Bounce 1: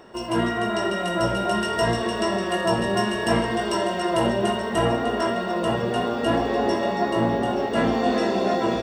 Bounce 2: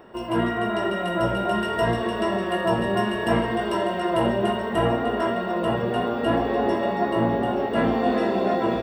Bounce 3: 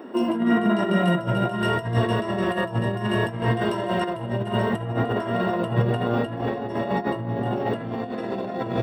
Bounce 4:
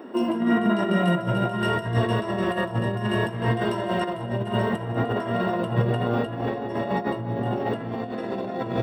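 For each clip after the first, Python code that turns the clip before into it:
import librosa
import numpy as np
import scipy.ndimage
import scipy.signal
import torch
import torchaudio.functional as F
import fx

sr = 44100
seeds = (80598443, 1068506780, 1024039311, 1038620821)

y1 = fx.peak_eq(x, sr, hz=6200.0, db=-15.0, octaves=1.0)
y2 = fx.over_compress(y1, sr, threshold_db=-26.0, ratio=-0.5)
y2 = fx.filter_sweep_highpass(y2, sr, from_hz=260.0, to_hz=110.0, start_s=0.11, end_s=1.7, q=4.7)
y3 = y2 + 10.0 ** (-16.0 / 20.0) * np.pad(y2, (int(192 * sr / 1000.0), 0))[:len(y2)]
y3 = y3 * librosa.db_to_amplitude(-1.0)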